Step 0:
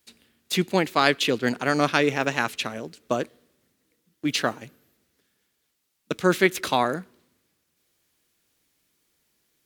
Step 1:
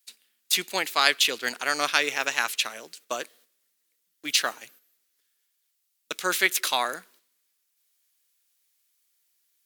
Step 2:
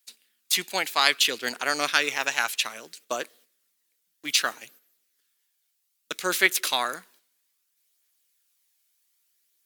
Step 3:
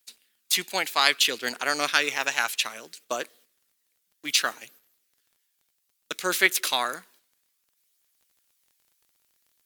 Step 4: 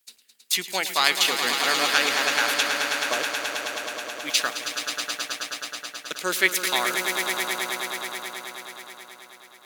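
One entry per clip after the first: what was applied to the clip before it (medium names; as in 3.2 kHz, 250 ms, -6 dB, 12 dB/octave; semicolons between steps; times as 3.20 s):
gate -52 dBFS, range -8 dB; high-pass 650 Hz 6 dB/octave; tilt EQ +3 dB/octave; trim -1.5 dB
phaser 0.62 Hz, delay 1.4 ms, feedback 26%
crackle 22 per s -50 dBFS
echo with a slow build-up 107 ms, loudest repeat 5, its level -9 dB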